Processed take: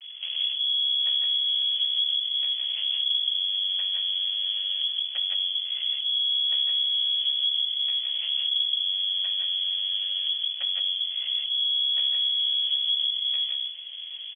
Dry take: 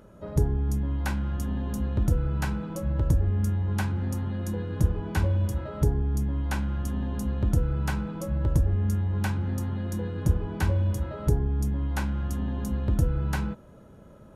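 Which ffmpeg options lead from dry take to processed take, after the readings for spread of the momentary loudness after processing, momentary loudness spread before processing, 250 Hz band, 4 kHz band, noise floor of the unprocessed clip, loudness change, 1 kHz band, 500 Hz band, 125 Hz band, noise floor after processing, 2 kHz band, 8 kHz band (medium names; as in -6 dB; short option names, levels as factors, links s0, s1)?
4 LU, 5 LU, under -40 dB, +31.0 dB, -50 dBFS, +4.5 dB, under -20 dB, under -25 dB, under -40 dB, -37 dBFS, -5.5 dB, under -35 dB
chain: -filter_complex "[0:a]aemphasis=mode=reproduction:type=riaa,acompressor=threshold=0.0447:ratio=6,aresample=16000,aeval=exprs='max(val(0),0)':c=same,aresample=44100,lowpass=f=2900:t=q:w=0.5098,lowpass=f=2900:t=q:w=0.6013,lowpass=f=2900:t=q:w=0.9,lowpass=f=2900:t=q:w=2.563,afreqshift=-3400,highpass=f=540:t=q:w=4.9,asplit=2[s0][s1];[s1]aecho=0:1:65|149|167|776:0.168|0.422|0.668|0.15[s2];[s0][s2]amix=inputs=2:normalize=0,volume=1.26"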